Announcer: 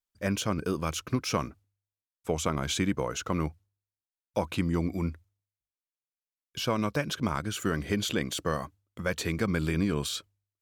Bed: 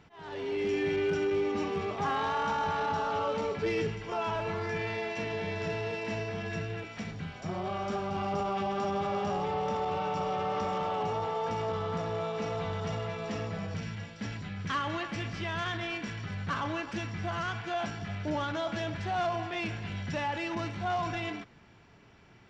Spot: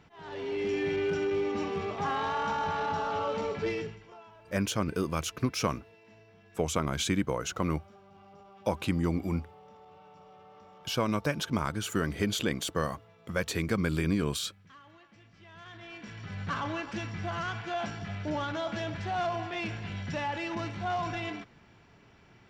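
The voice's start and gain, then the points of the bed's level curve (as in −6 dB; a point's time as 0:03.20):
4.30 s, −0.5 dB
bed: 0:03.68 −0.5 dB
0:04.31 −22.5 dB
0:15.28 −22.5 dB
0:16.42 −0.5 dB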